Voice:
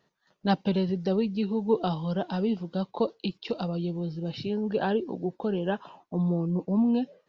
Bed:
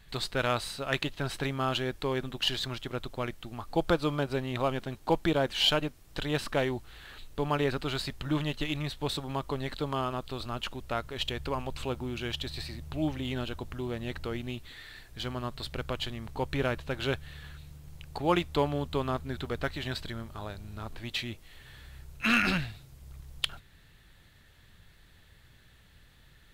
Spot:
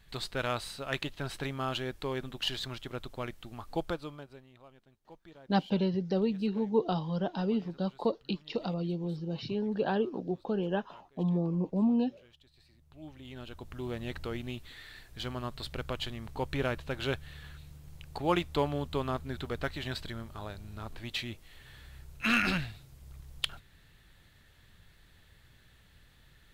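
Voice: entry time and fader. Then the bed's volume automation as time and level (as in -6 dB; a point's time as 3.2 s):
5.05 s, -3.0 dB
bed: 3.74 s -4 dB
4.6 s -27 dB
12.52 s -27 dB
13.88 s -2 dB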